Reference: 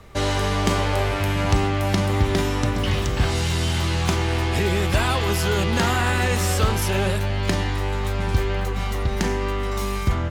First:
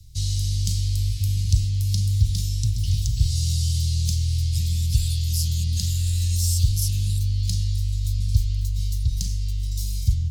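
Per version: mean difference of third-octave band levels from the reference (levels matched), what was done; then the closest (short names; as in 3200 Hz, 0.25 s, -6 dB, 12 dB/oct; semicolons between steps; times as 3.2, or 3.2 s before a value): 17.5 dB: Chebyshev band-stop 120–4600 Hz, order 3; gain +2.5 dB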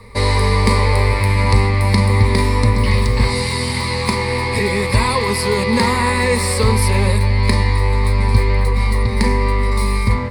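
5.0 dB: ripple EQ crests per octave 0.93, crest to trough 17 dB; gain +2.5 dB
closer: second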